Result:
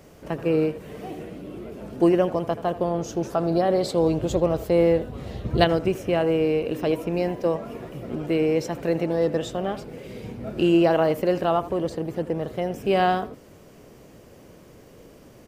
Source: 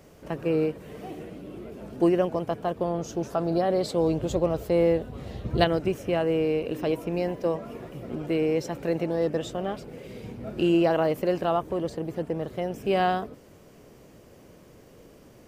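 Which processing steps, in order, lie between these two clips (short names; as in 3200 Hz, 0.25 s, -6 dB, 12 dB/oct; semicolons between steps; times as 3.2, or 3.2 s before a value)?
speakerphone echo 80 ms, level -15 dB; gain +3 dB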